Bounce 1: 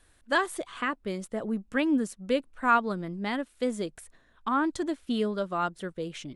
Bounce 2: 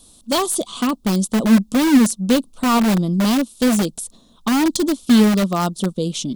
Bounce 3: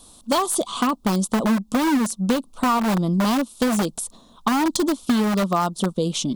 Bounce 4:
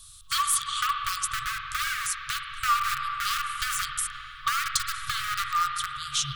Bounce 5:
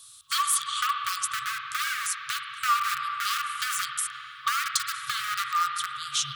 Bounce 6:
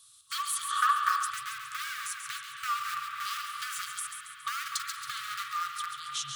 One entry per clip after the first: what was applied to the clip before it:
EQ curve 110 Hz 0 dB, 220 Hz +15 dB, 320 Hz +4 dB, 1200 Hz 0 dB, 1700 Hz -22 dB, 3500 Hz +10 dB, 6000 Hz +12 dB; in parallel at -5.5 dB: wrapped overs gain 19 dB; on the sum: gain +4 dB
bell 1000 Hz +8 dB 1.4 oct; compressor, threshold -17 dBFS, peak gain reduction 10 dB
FFT band-reject 140–1100 Hz; spring tank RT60 3.7 s, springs 45/56 ms, chirp 65 ms, DRR 2.5 dB
HPF 210 Hz 12 dB/oct
split-band echo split 2700 Hz, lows 0.253 s, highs 0.138 s, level -7 dB; spectral gain 0.7–1.31, 440–1900 Hz +11 dB; gain -8 dB

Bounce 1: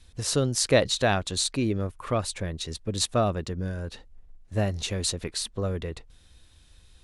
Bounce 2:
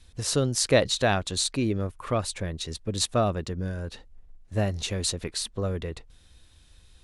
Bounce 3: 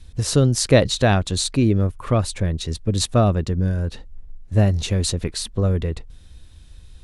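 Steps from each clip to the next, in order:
nothing audible
low shelf 290 Hz +9.5 dB; gain +3 dB

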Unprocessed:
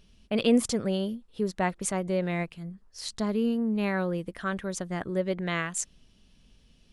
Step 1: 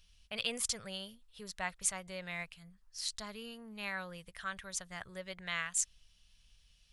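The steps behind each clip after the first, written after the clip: passive tone stack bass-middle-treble 10-0-10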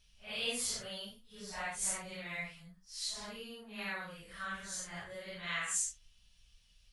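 phase scrambler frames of 0.2 s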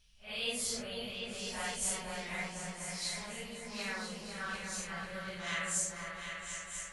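repeats that get brighter 0.248 s, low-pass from 400 Hz, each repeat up 2 oct, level 0 dB

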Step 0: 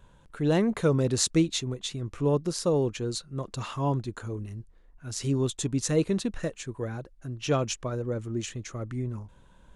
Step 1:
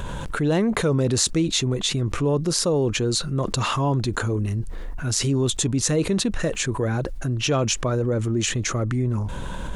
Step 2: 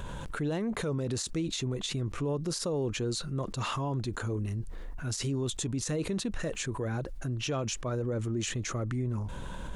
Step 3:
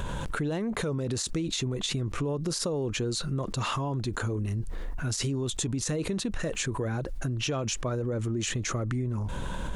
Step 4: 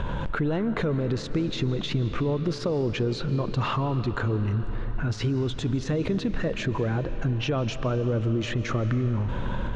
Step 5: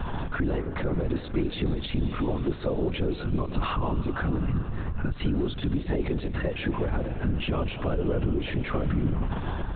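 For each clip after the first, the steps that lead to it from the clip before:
fast leveller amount 70%
limiter -15.5 dBFS, peak gain reduction 11.5 dB; gain -8.5 dB
compressor, threshold -33 dBFS, peak gain reduction 6 dB; gain +6.5 dB
air absorption 240 m; reverb RT60 5.0 s, pre-delay 0.105 s, DRR 11 dB; gain +4.5 dB
notch comb 220 Hz; LPC vocoder at 8 kHz whisper

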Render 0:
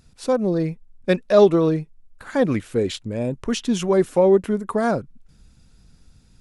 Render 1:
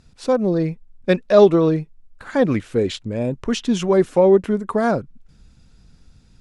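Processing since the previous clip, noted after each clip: Bessel low-pass 6800 Hz, order 2; gain +2 dB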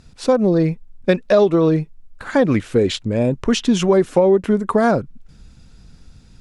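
compressor 6:1, threshold -16 dBFS, peak gain reduction 9.5 dB; gain +5.5 dB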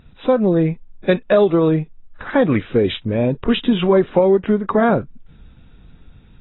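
AAC 16 kbps 22050 Hz

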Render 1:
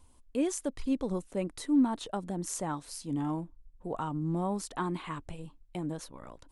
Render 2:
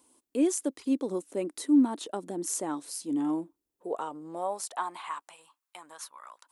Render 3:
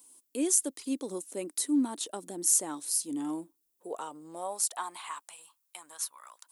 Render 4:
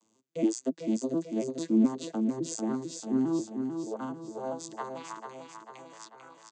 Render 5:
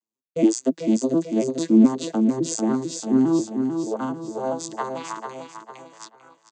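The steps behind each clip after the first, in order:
high shelf 6100 Hz +10.5 dB; high-pass sweep 310 Hz -> 1100 Hz, 3.42–5.46; gain -2 dB
pre-emphasis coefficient 0.8; gain +8.5 dB
arpeggiated vocoder minor triad, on A2, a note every 0.141 s; on a send: feedback echo 0.444 s, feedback 54%, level -6 dB; on the sum: gain +3 dB
expander -43 dBFS; gain +9 dB

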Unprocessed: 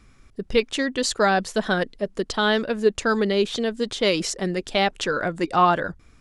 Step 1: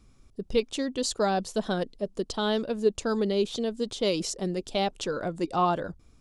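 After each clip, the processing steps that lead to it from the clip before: bell 1800 Hz -11.5 dB 1.1 oct; gain -4 dB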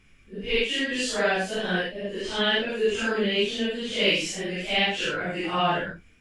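phase scrambler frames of 0.2 s; band shelf 2200 Hz +15.5 dB 1.2 oct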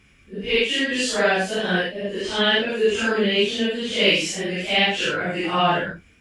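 HPF 45 Hz; gain +4.5 dB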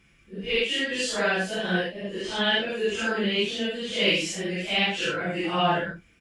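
comb 5.9 ms, depth 38%; gain -5 dB

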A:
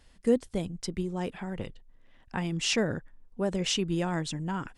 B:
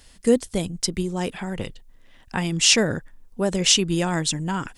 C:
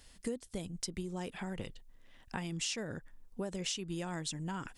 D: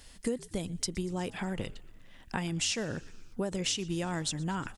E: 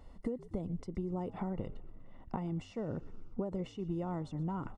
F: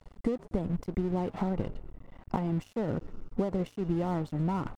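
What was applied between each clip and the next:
high shelf 3700 Hz +11.5 dB; gain +6 dB
compressor 6:1, threshold -28 dBFS, peak gain reduction 15 dB; gain -7.5 dB
frequency-shifting echo 0.12 s, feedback 64%, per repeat -73 Hz, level -22 dB; gain +5.5 dB
compressor, threshold -35 dBFS, peak gain reduction 8.5 dB; polynomial smoothing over 65 samples; gain +2.5 dB
crossover distortion -52 dBFS; gain +8 dB

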